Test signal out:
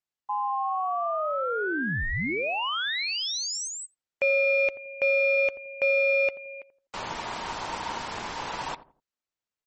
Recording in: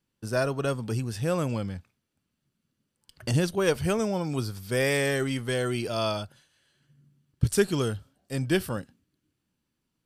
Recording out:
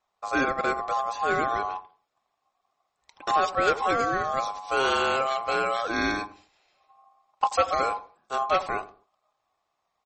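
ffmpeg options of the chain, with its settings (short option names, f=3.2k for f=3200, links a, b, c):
-filter_complex "[0:a]aeval=exprs='val(0)*sin(2*PI*930*n/s)':c=same,acrossover=split=9300[a][b];[b]acompressor=threshold=-56dB:ratio=4:attack=1:release=60[c];[a][c]amix=inputs=2:normalize=0,highshelf=f=5k:g=4,asoftclip=type=tanh:threshold=-18dB,aemphasis=mode=reproduction:type=cd,asplit=2[d][e];[e]adelay=84,lowpass=f=820:p=1,volume=-13dB,asplit=2[f][g];[g]adelay=84,lowpass=f=820:p=1,volume=0.35,asplit=2[h][i];[i]adelay=84,lowpass=f=820:p=1,volume=0.35[j];[d][f][h][j]amix=inputs=4:normalize=0,aresample=32000,aresample=44100,volume=5.5dB" -ar 44100 -c:a libmp3lame -b:a 32k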